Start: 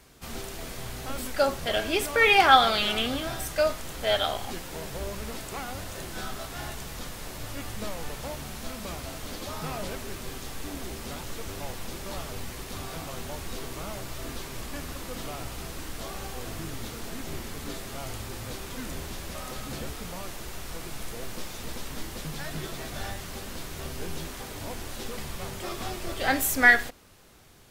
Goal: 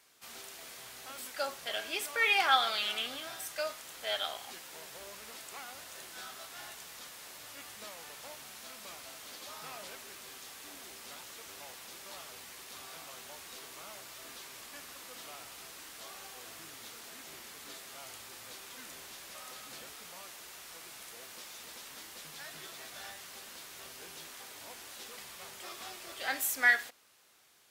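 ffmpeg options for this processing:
-af "highpass=f=1.3k:p=1,volume=-5.5dB"

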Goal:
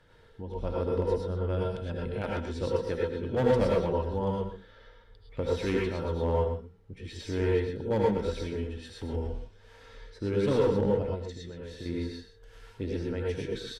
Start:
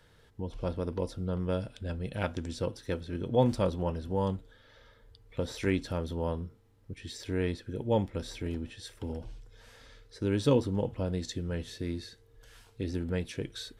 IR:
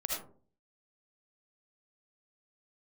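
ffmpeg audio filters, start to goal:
-filter_complex "[0:a]lowpass=f=2.8k:p=1,bandreject=f=60:t=h:w=6,bandreject=f=120:t=h:w=6,bandreject=f=180:t=h:w=6,asettb=1/sr,asplit=3[a][b][c];[a]atrim=end=11.024[d];[b]atrim=start=11.02:end=11.86,asetpts=PTS-STARTPTS,afade=t=in:d=0.004:c=qsin,afade=t=out:st=0.836:d=0.004:c=qsin,acompressor=threshold=-40dB:ratio=6[e];[c]atrim=start=11.856[f];[d][e]acrossfade=d=0.004:c1=hsin:c2=qsin[g];[g][f]acrossfade=d=0.004:c1=qsin:c2=hsin,tremolo=f=1.1:d=0.32,asoftclip=type=hard:threshold=-23.5dB,asplit=2[h][i];[i]adelay=122.4,volume=-9dB,highshelf=f=4k:g=-2.76[j];[h][j]amix=inputs=2:normalize=0[k];[1:a]atrim=start_sample=2205,atrim=end_sample=4410,asetrate=31752,aresample=44100[l];[k][l]afir=irnorm=-1:irlink=0"

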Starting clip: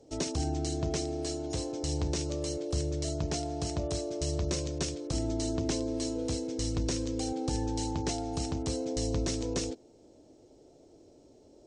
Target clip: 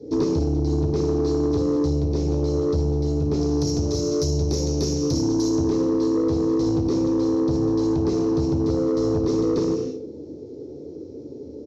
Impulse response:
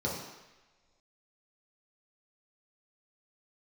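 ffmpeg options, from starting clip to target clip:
-filter_complex "[0:a]asettb=1/sr,asplit=3[a][b][c];[a]atrim=end=3.414[d];[b]atrim=start=3.41:end=5.54,asetpts=PTS-STARTPTS,afade=t=in:d=0.004:c=qsin,afade=t=out:st=2.126:d=0.004:c=qsin,equalizer=f=6.1k:t=o:w=0.98:g=15[e];[c]atrim=start=5.536[f];[d][e]acrossfade=d=0.004:c1=hsin:c2=qsin[g];[g][f]acrossfade=d=0.004:c1=qsin:c2=hsin,aresample=16000,aresample=44100[h];[1:a]atrim=start_sample=2205,afade=t=out:st=0.38:d=0.01,atrim=end_sample=17199[i];[h][i]afir=irnorm=-1:irlink=0,acompressor=threshold=-24dB:ratio=6,lowshelf=f=530:t=q:w=3:g=6,asoftclip=type=tanh:threshold=-15dB"

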